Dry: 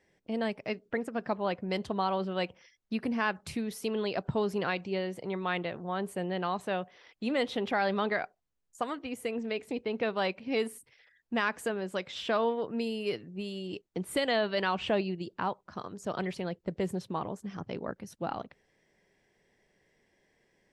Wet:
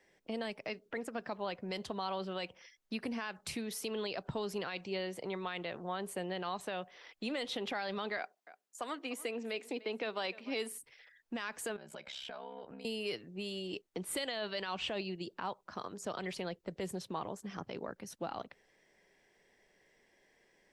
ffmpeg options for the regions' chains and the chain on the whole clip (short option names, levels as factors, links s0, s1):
-filter_complex "[0:a]asettb=1/sr,asplit=3[s0][s1][s2];[s0]atrim=end=8.174[s3];[s1]atrim=start=8.17:end=10.72,asetpts=PTS-STARTPTS,afade=t=in:d=0.004:c=qsin,afade=t=out:st=2.546:d=0.004:c=qsin,highpass=f=200:w=0.5412,highpass=f=200:w=1.3066,aecho=1:1:297:0.075,atrim=end_sample=112455[s4];[s2]atrim=start=10.716[s5];[s3][s4]acrossfade=d=0.004:c1=hsin:c2=qsin[s6];[s6][s5]acrossfade=d=0.004:c1=qsin:c2=hsin,asettb=1/sr,asplit=3[s7][s8][s9];[s7]atrim=end=11.764[s10];[s8]atrim=start=11.76:end=12.85,asetpts=PTS-STARTPTS,afade=t=in:d=0.004:c=qsin,afade=t=out:st=1.086:d=0.004:c=qsin,aeval=exprs='val(0)*sin(2*PI*33*n/s)':c=same,aecho=1:1:1.3:0.4,atrim=end_sample=48069,acompressor=threshold=0.00708:ratio=12:attack=3.2:release=140:knee=1:detection=peak[s11];[s9]atrim=start=12.846[s12];[s10][s11]acrossfade=d=0.004:c1=hsin:c2=qsin[s13];[s13][s12]acrossfade=d=0.004:c1=qsin:c2=hsin,acrossover=split=140|3000[s14][s15][s16];[s15]acompressor=threshold=0.0112:ratio=2[s17];[s14][s17][s16]amix=inputs=3:normalize=0,equalizer=f=93:w=0.45:g=-10,alimiter=level_in=1.88:limit=0.0631:level=0:latency=1:release=40,volume=0.531,volume=1.33"